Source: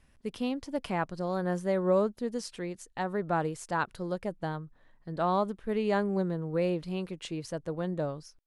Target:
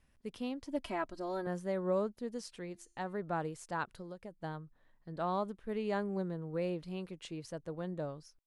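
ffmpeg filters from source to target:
-filter_complex "[0:a]asettb=1/sr,asplit=3[s0][s1][s2];[s0]atrim=end=0.674[s3];[s1]atrim=start=0.67:end=1.47,asetpts=PTS-STARTPTS,afade=t=in:d=0.004:c=qsin,afade=t=out:st=0.796:d=0.004:c=qsin,aecho=1:1:3.1:0.81,atrim=end_sample=35280[s4];[s2]atrim=start=1.466[s5];[s3][s4]acrossfade=d=0.004:c1=hsin:c2=qsin[s6];[s6][s5]acrossfade=d=0.004:c1=qsin:c2=hsin,asettb=1/sr,asplit=3[s7][s8][s9];[s7]atrim=end=2.594[s10];[s8]atrim=start=2.59:end=3.17,asetpts=PTS-STARTPTS,afade=t=in:d=0.004:c=qsin,afade=t=out:st=0.576:d=0.004:c=qsin,bandreject=f=343.7:t=h:w=4,bandreject=f=687.4:t=h:w=4,bandreject=f=1031.1:t=h:w=4,bandreject=f=1374.8:t=h:w=4,bandreject=f=1718.5:t=h:w=4,bandreject=f=2062.2:t=h:w=4,bandreject=f=2405.9:t=h:w=4,bandreject=f=2749.6:t=h:w=4,bandreject=f=3093.3:t=h:w=4,bandreject=f=3437:t=h:w=4,bandreject=f=3780.7:t=h:w=4,bandreject=f=4124.4:t=h:w=4,bandreject=f=4468.1:t=h:w=4,bandreject=f=4811.8:t=h:w=4,bandreject=f=5155.5:t=h:w=4,bandreject=f=5499.2:t=h:w=4,bandreject=f=5842.9:t=h:w=4,bandreject=f=6186.6:t=h:w=4,bandreject=f=6530.3:t=h:w=4,bandreject=f=6874:t=h:w=4,bandreject=f=7217.7:t=h:w=4,bandreject=f=7561.4:t=h:w=4,bandreject=f=7905.1:t=h:w=4,bandreject=f=8248.8:t=h:w=4,bandreject=f=8592.5:t=h:w=4,bandreject=f=8936.2:t=h:w=4,bandreject=f=9279.9:t=h:w=4,bandreject=f=9623.6:t=h:w=4,bandreject=f=9967.3:t=h:w=4,bandreject=f=10311:t=h:w=4,bandreject=f=10654.7:t=h:w=4,bandreject=f=10998.4:t=h:w=4,bandreject=f=11342.1:t=h:w=4[s11];[s9]atrim=start=3.166[s12];[s10][s11]acrossfade=d=0.004:c1=hsin:c2=qsin[s13];[s13][s12]acrossfade=d=0.004:c1=qsin:c2=hsin,asettb=1/sr,asplit=3[s14][s15][s16];[s14]atrim=end=3.994[s17];[s15]atrim=start=3.99:end=4.44,asetpts=PTS-STARTPTS,afade=t=in:d=0.004:c=qsin,afade=t=out:st=0.446:d=0.004:c=qsin,acompressor=threshold=0.0158:ratio=6[s18];[s16]atrim=start=4.436[s19];[s17][s18]acrossfade=d=0.004:c1=hsin:c2=qsin[s20];[s20][s19]acrossfade=d=0.004:c1=qsin:c2=hsin,volume=0.447"

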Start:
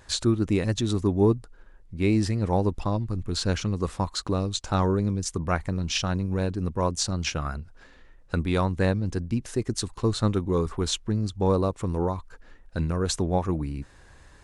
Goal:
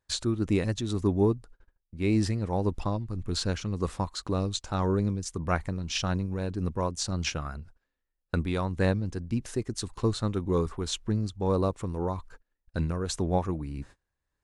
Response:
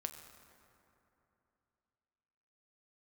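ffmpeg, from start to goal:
-af "tremolo=f=1.8:d=0.39,agate=range=0.0398:threshold=0.00562:ratio=16:detection=peak,volume=0.841"

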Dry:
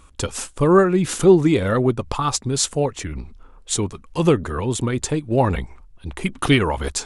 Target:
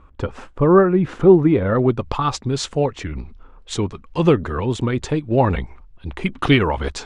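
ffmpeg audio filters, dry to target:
-af "asetnsamples=n=441:p=0,asendcmd='1.79 lowpass f 3900',lowpass=1600,volume=1.19"

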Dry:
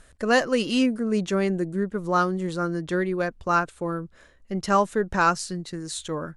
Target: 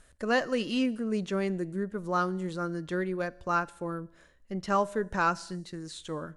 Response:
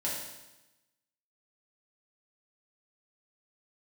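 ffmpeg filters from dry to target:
-filter_complex "[0:a]asplit=2[s0][s1];[1:a]atrim=start_sample=2205,afade=t=out:st=0.33:d=0.01,atrim=end_sample=14994[s2];[s1][s2]afir=irnorm=-1:irlink=0,volume=0.0631[s3];[s0][s3]amix=inputs=2:normalize=0,acrossover=split=5000[s4][s5];[s5]acompressor=threshold=0.00631:ratio=4:attack=1:release=60[s6];[s4][s6]amix=inputs=2:normalize=0,highshelf=f=9800:g=3.5,volume=0.473"

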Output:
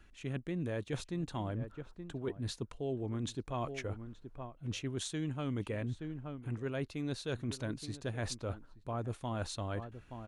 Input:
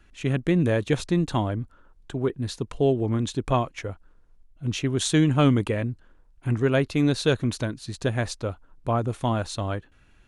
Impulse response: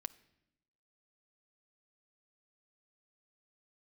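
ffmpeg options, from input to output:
-filter_complex "[0:a]asplit=2[s0][s1];[s1]adelay=874.6,volume=0.112,highshelf=f=4000:g=-19.7[s2];[s0][s2]amix=inputs=2:normalize=0,areverse,acompressor=threshold=0.0251:ratio=6,areverse,volume=0.708"

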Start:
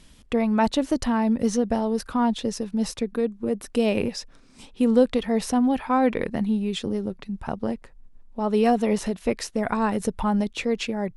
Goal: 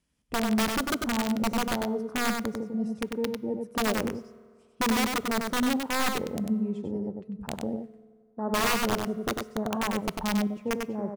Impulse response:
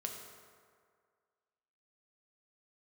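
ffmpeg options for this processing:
-filter_complex "[0:a]highpass=53,afwtdn=0.0398,equalizer=f=3700:w=3.4:g=-7,acrossover=split=710|1300[s0][s1][s2];[s2]acompressor=threshold=0.00251:ratio=8[s3];[s0][s1][s3]amix=inputs=3:normalize=0,aeval=exprs='(mod(5.62*val(0)+1,2)-1)/5.62':c=same,aecho=1:1:97:0.596,asplit=2[s4][s5];[1:a]atrim=start_sample=2205,lowshelf=f=130:g=10.5[s6];[s5][s6]afir=irnorm=-1:irlink=0,volume=0.178[s7];[s4][s7]amix=inputs=2:normalize=0,volume=0.447"

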